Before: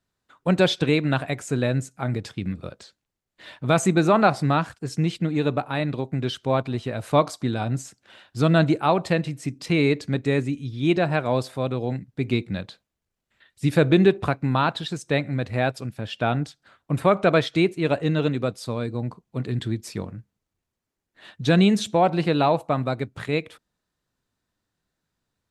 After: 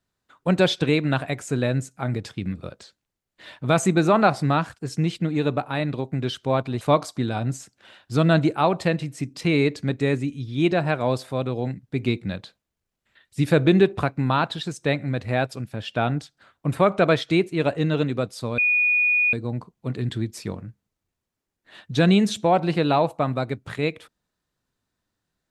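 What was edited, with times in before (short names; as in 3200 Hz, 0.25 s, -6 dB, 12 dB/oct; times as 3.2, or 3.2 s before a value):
6.81–7.06 cut
18.83 add tone 2460 Hz -16.5 dBFS 0.75 s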